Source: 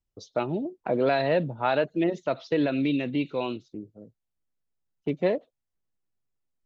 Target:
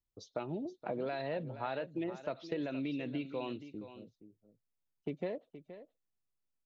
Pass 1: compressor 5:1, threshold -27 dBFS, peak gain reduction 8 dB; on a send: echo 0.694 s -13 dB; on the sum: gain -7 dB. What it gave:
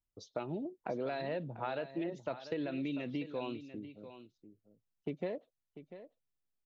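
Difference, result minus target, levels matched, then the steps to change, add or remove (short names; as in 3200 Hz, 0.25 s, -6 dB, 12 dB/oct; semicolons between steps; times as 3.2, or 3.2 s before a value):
echo 0.222 s late
change: echo 0.472 s -13 dB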